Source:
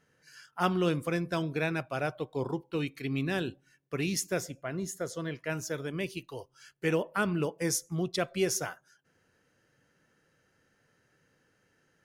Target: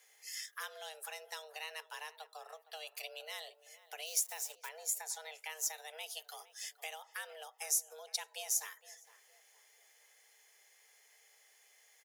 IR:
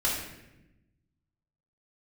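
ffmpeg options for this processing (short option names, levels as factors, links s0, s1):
-filter_complex "[0:a]asettb=1/sr,asplit=3[s0][s1][s2];[s0]atrim=end=4.064[s3];[s1]atrim=start=4.06:end=4.69,asetpts=PTS-STARTPTS,afade=t=in:d=0.004:c=qsin,afade=t=out:st=0.626:d=0.004:c=qsin,acrusher=bits=7:mix=0:aa=0.5[s4];[s2]atrim=start=4.686[s5];[s3][s4]acrossfade=d=0.004:c1=hsin:c2=qsin[s6];[s6][s5]acrossfade=d=0.004:c1=qsin:c2=hsin,acompressor=threshold=0.00708:ratio=6,afreqshift=310,aderivative,asplit=2[s7][s8];[s8]adelay=463,lowpass=f=1500:p=1,volume=0.178,asplit=2[s9][s10];[s10]adelay=463,lowpass=f=1500:p=1,volume=0.42,asplit=2[s11][s12];[s12]adelay=463,lowpass=f=1500:p=1,volume=0.42,asplit=2[s13][s14];[s14]adelay=463,lowpass=f=1500:p=1,volume=0.42[s15];[s9][s11][s13][s15]amix=inputs=4:normalize=0[s16];[s7][s16]amix=inputs=2:normalize=0,volume=5.01"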